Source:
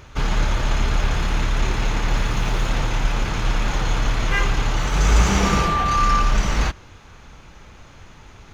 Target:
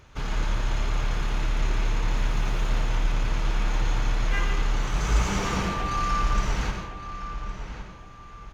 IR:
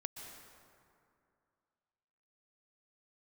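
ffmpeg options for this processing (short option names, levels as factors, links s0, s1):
-filter_complex "[0:a]asplit=2[s0][s1];[s1]adelay=1112,lowpass=f=3600:p=1,volume=0.316,asplit=2[s2][s3];[s3]adelay=1112,lowpass=f=3600:p=1,volume=0.34,asplit=2[s4][s5];[s5]adelay=1112,lowpass=f=3600:p=1,volume=0.34,asplit=2[s6][s7];[s7]adelay=1112,lowpass=f=3600:p=1,volume=0.34[s8];[s0][s2][s4][s6][s8]amix=inputs=5:normalize=0[s9];[1:a]atrim=start_sample=2205,afade=t=out:st=0.37:d=0.01,atrim=end_sample=16758,asetrate=66150,aresample=44100[s10];[s9][s10]afir=irnorm=-1:irlink=0,volume=0.841"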